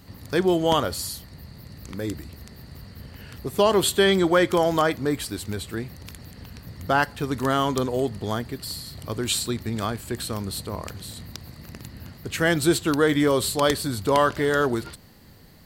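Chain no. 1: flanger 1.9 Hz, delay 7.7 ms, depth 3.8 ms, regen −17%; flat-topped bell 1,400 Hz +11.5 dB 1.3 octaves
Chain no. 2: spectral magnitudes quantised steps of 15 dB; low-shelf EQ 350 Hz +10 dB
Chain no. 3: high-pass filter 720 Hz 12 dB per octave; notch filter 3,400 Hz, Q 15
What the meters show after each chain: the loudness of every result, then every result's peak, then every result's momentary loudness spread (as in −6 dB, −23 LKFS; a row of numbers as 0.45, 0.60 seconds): −22.0, −20.0, −28.0 LKFS; −2.5, −4.0, −9.5 dBFS; 20, 19, 21 LU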